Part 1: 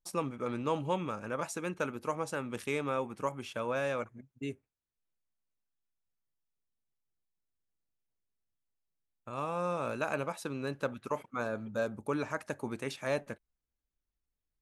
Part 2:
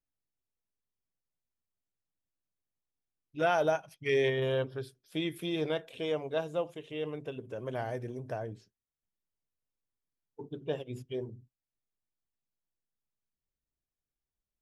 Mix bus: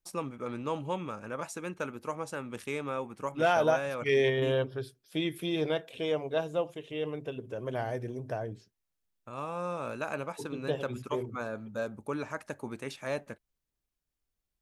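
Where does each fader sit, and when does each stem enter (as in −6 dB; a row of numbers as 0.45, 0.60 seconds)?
−1.5, +2.0 decibels; 0.00, 0.00 seconds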